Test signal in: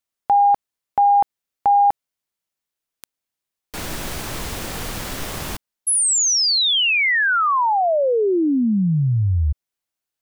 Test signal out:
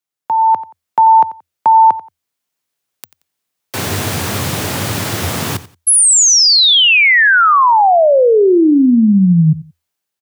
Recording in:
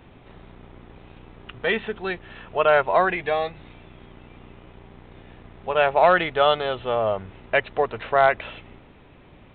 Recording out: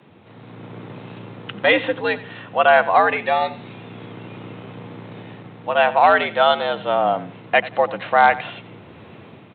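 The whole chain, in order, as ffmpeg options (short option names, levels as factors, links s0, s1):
-af "aecho=1:1:89|178:0.141|0.0325,afreqshift=82,dynaudnorm=f=150:g=7:m=3.35,volume=0.891"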